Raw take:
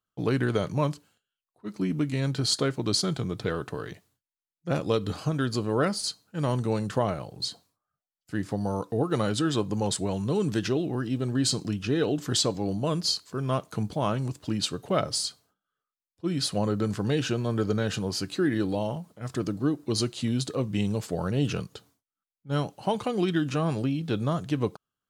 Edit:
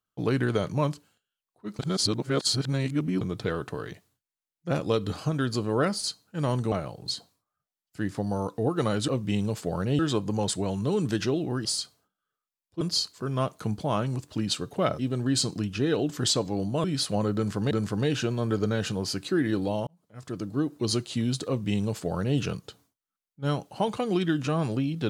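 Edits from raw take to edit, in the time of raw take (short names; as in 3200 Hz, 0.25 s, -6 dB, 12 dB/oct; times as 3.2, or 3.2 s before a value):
1.79–3.21 reverse
6.72–7.06 cut
11.08–12.93 swap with 15.11–16.27
16.78–17.14 loop, 2 plays
18.94–19.79 fade in
20.54–21.45 copy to 9.42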